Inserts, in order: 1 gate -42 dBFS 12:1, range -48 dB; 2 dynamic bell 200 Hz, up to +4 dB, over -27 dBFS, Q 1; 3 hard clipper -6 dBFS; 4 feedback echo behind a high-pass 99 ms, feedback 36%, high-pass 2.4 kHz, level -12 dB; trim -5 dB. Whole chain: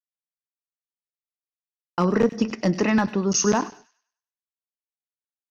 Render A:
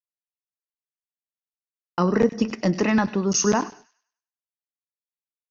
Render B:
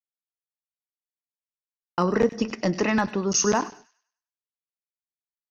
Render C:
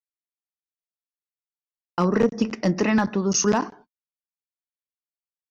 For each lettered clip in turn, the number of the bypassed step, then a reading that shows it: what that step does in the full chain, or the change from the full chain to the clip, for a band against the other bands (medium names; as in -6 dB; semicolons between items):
3, distortion -25 dB; 2, loudness change -2.0 LU; 4, echo-to-direct -18.0 dB to none